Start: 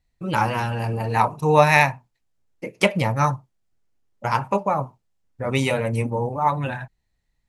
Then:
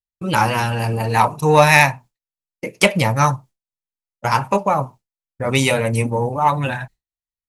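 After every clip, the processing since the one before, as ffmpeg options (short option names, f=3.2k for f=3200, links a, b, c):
-af "agate=range=-33dB:threshold=-39dB:ratio=3:detection=peak,highshelf=f=3.2k:g=8.5,acontrast=31,volume=-1dB"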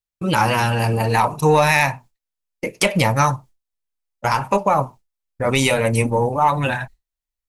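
-af "asubboost=boost=4.5:cutoff=50,alimiter=limit=-9dB:level=0:latency=1:release=100,volume=2.5dB"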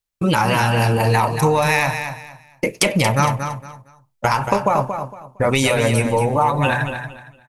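-filter_complex "[0:a]acompressor=threshold=-20dB:ratio=6,asplit=2[a][b];[b]aecho=0:1:230|460|690:0.398|0.0995|0.0249[c];[a][c]amix=inputs=2:normalize=0,volume=6dB"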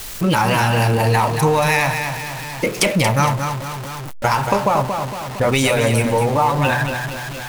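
-af "aeval=exprs='val(0)+0.5*0.075*sgn(val(0))':c=same,volume=-1dB"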